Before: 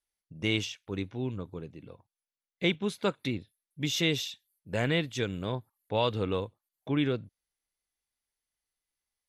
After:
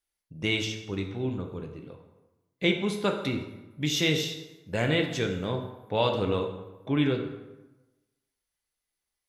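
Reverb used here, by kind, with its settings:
dense smooth reverb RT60 1.1 s, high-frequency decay 0.65×, DRR 3.5 dB
level +1.5 dB

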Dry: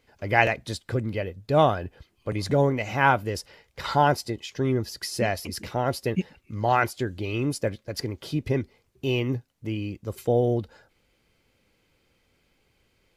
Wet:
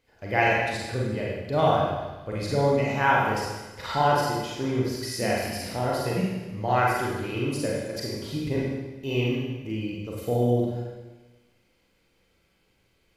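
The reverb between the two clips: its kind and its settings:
four-comb reverb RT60 1.2 s, combs from 33 ms, DRR −4.5 dB
level −5.5 dB

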